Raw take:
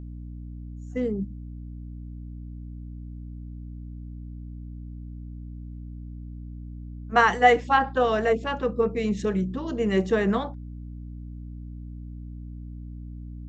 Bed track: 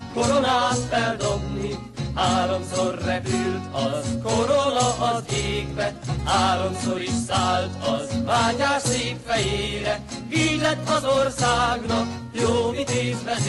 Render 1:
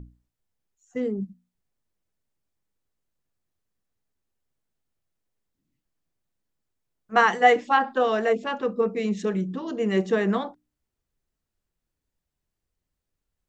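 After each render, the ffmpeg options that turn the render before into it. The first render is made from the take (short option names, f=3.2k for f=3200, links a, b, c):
-af "bandreject=f=60:t=h:w=6,bandreject=f=120:t=h:w=6,bandreject=f=180:t=h:w=6,bandreject=f=240:t=h:w=6,bandreject=f=300:t=h:w=6"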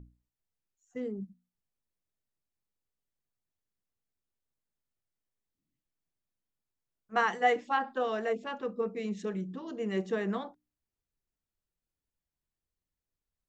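-af "volume=-9dB"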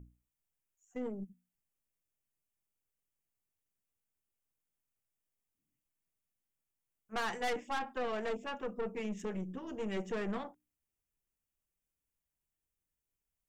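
-af "aexciter=amount=1.2:drive=1.1:freq=2.2k,aeval=exprs='(tanh(39.8*val(0)+0.55)-tanh(0.55))/39.8':c=same"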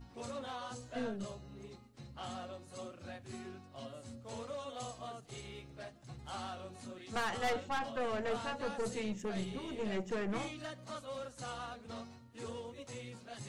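-filter_complex "[1:a]volume=-23.5dB[a];[0:a][a]amix=inputs=2:normalize=0"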